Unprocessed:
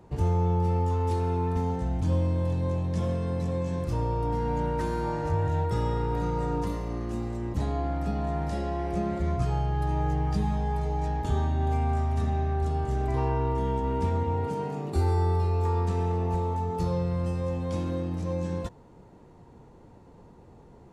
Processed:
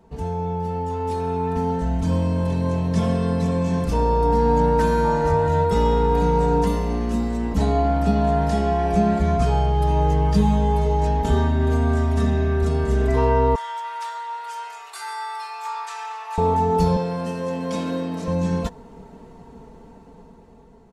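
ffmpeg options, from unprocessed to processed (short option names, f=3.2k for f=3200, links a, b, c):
-filter_complex "[0:a]asettb=1/sr,asplit=3[a][b][c];[a]atrim=end=13.554[d];[b]atrim=start=13.55:end=16.38,asetpts=PTS-STARTPTS,afade=t=in:d=0.004:c=qsin,afade=t=out:st=2.826:d=0.004:c=qsin,highpass=f=1.1k:w=0.5412,highpass=f=1.1k:w=1.3066[e];[c]atrim=start=16.376[f];[d][e]acrossfade=d=0.004:c1=hsin:c2=qsin[g];[g][f]acrossfade=d=0.004:c1=qsin:c2=hsin,asettb=1/sr,asplit=3[h][i][j];[h]atrim=end=16.964[k];[i]atrim=start=16.96:end=18.28,asetpts=PTS-STARTPTS,afade=t=in:d=0.004:c=qsin,afade=t=out:st=1.316:d=0.004:c=qsin,highpass=250[l];[j]atrim=start=18.276[m];[k][l]acrossfade=d=0.004:c1=hsin:c2=qsin[n];[n][m]acrossfade=d=0.004:c1=qsin:c2=hsin,aecho=1:1:4.5:0.84,dynaudnorm=f=730:g=5:m=10dB,volume=-2dB"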